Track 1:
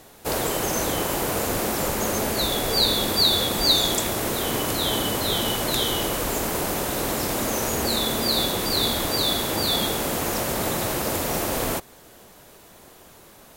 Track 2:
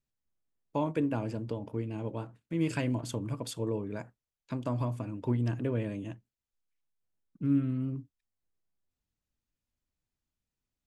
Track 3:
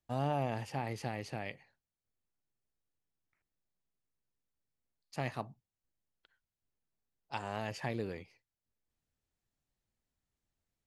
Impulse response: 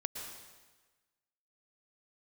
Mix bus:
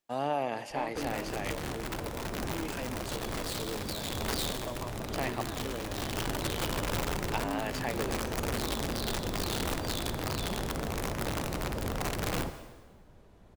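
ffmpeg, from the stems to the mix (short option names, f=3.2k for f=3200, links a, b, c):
-filter_complex "[0:a]aemphasis=mode=reproduction:type=riaa,aeval=exprs='(mod(4.47*val(0)+1,2)-1)/4.47':c=same,adelay=700,volume=-16.5dB,asplit=2[a][b];[b]volume=-6.5dB[c];[1:a]bass=f=250:g=-15,treble=f=4k:g=-1,asoftclip=type=hard:threshold=-30dB,volume=-3dB,asplit=2[d][e];[2:a]highpass=290,volume=2.5dB,asplit=2[f][g];[g]volume=-10.5dB[h];[e]apad=whole_len=628930[i];[a][i]sidechaincompress=threshold=-47dB:ratio=8:attack=16:release=300[j];[3:a]atrim=start_sample=2205[k];[c][h]amix=inputs=2:normalize=0[l];[l][k]afir=irnorm=-1:irlink=0[m];[j][d][f][m]amix=inputs=4:normalize=0"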